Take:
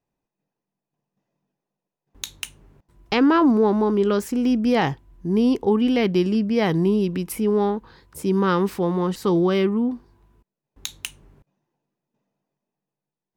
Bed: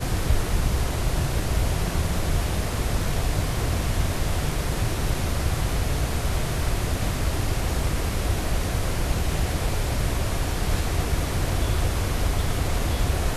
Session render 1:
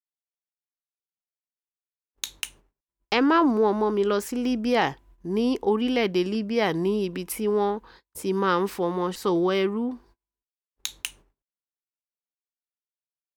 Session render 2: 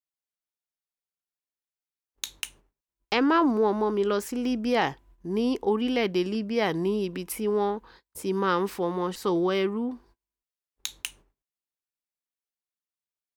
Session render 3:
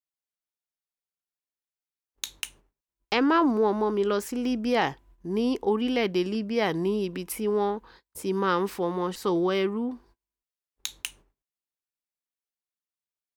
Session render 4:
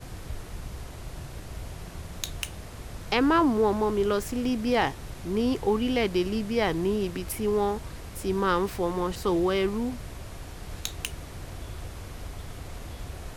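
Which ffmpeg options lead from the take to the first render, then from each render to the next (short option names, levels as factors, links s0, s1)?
-af "agate=range=0.0224:threshold=0.00447:ratio=16:detection=peak,equalizer=f=120:t=o:w=2:g=-12"
-af "volume=0.794"
-af anull
-filter_complex "[1:a]volume=0.178[s0];[0:a][s0]amix=inputs=2:normalize=0"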